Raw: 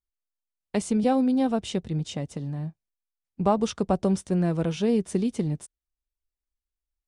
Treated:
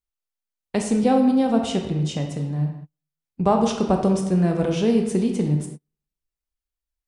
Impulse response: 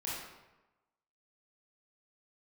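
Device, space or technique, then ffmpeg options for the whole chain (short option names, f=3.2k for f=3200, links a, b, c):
keyed gated reverb: -filter_complex "[0:a]asplit=3[a][b][c];[1:a]atrim=start_sample=2205[d];[b][d]afir=irnorm=-1:irlink=0[e];[c]apad=whole_len=311974[f];[e][f]sidechaingate=range=-39dB:threshold=-52dB:ratio=16:detection=peak,volume=-2dB[g];[a][g]amix=inputs=2:normalize=0"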